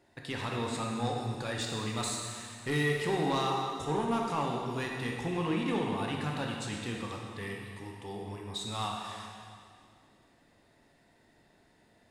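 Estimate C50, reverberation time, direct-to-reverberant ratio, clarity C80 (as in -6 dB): 1.0 dB, 2.2 s, -1.0 dB, 3.0 dB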